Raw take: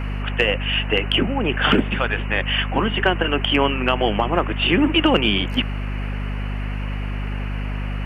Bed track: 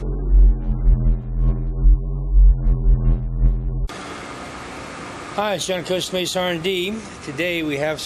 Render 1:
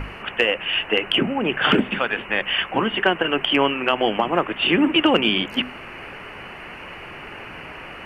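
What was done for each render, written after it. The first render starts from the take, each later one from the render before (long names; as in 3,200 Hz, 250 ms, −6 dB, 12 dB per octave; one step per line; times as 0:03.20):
mains-hum notches 50/100/150/200/250 Hz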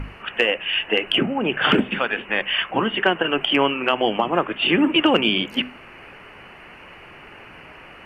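noise reduction from a noise print 6 dB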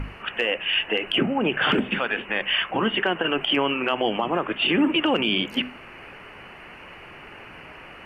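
brickwall limiter −12 dBFS, peak gain reduction 7 dB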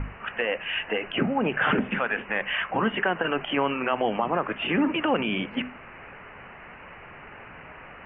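low-pass filter 2,300 Hz 24 dB per octave
parametric band 340 Hz −5.5 dB 0.55 octaves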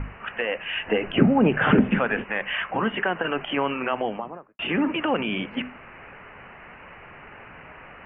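0:00.86–0:02.24: low-shelf EQ 490 Hz +10.5 dB
0:03.85–0:04.59: fade out and dull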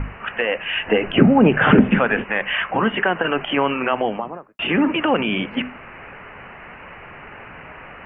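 level +5.5 dB
brickwall limiter −1 dBFS, peak gain reduction 1.5 dB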